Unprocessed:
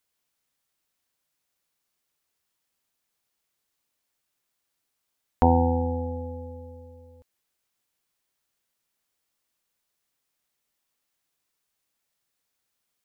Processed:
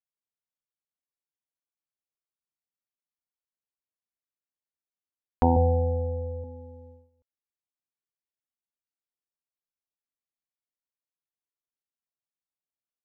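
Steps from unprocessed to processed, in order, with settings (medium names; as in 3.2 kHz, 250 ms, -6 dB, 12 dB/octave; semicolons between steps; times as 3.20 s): gate -47 dBFS, range -17 dB; low-pass 1.2 kHz 6 dB/octave; 5.56–6.44 s: comb 1.7 ms, depth 87%; trim -1.5 dB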